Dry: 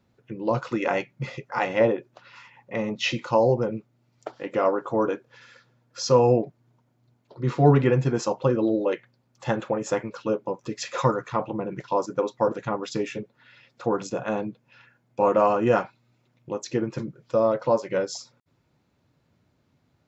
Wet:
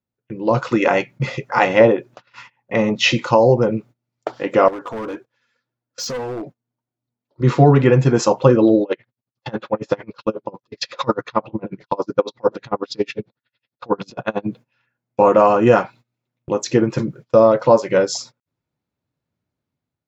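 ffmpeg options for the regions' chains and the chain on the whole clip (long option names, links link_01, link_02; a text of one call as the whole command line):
ffmpeg -i in.wav -filter_complex "[0:a]asettb=1/sr,asplit=3[link_01][link_02][link_03];[link_01]atrim=end=4.684[link_04];[link_02]atrim=start=4.68:end=7.41,asetpts=PTS-STARTPTS,afade=type=in:duration=0.004:curve=qsin,afade=type=out:start_time=2.726:duration=0.004:curve=qsin,acompressor=threshold=-27dB:ratio=4:attack=3.2:release=140:knee=1:detection=peak,flanger=delay=2.5:depth=2.2:regen=45:speed=1.8:shape=triangular,volume=33.5dB,asoftclip=hard,volume=-33.5dB[link_05];[link_03]atrim=start=7.406[link_06];[link_04][link_05]acrossfade=duration=0.004:curve1=hsin:curve2=qsin[link_07];[link_07][link_06]acrossfade=duration=0.004:curve1=qsin:curve2=hsin,asettb=1/sr,asplit=3[link_08][link_09][link_10];[link_08]atrim=end=8.834[link_11];[link_09]atrim=start=8.83:end=14.46,asetpts=PTS-STARTPTS,afade=type=in:duration=0.004:curve=qsin,afade=type=out:start_time=5.626:duration=0.004:curve=qsin,lowpass=frequency=4400:width_type=q:width=2.8,highshelf=frequency=2300:gain=-6,aeval=exprs='val(0)*pow(10,-32*(0.5-0.5*cos(2*PI*11*n/s))/20)':channel_layout=same[link_12];[link_10]atrim=start=14.456[link_13];[link_11][link_12]acrossfade=duration=0.004:curve1=hsin:curve2=qsin[link_14];[link_14][link_13]acrossfade=duration=0.004:curve1=qsin:curve2=hsin,agate=range=-24dB:threshold=-47dB:ratio=16:detection=peak,alimiter=limit=-11dB:level=0:latency=1:release=387,dynaudnorm=framelen=200:gausssize=5:maxgain=7dB,volume=3.5dB" out.wav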